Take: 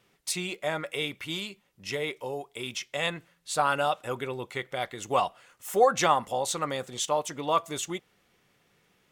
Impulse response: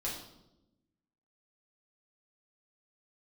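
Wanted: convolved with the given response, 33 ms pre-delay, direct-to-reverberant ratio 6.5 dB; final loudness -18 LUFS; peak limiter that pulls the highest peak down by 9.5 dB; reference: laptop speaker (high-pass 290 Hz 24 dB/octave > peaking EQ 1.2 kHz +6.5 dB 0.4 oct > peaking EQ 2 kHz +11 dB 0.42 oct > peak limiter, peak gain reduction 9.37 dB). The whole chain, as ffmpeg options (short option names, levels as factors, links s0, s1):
-filter_complex "[0:a]alimiter=limit=0.112:level=0:latency=1,asplit=2[s0][s1];[1:a]atrim=start_sample=2205,adelay=33[s2];[s1][s2]afir=irnorm=-1:irlink=0,volume=0.355[s3];[s0][s3]amix=inputs=2:normalize=0,highpass=f=290:w=0.5412,highpass=f=290:w=1.3066,equalizer=f=1200:t=o:w=0.4:g=6.5,equalizer=f=2000:t=o:w=0.42:g=11,volume=5.01,alimiter=limit=0.422:level=0:latency=1"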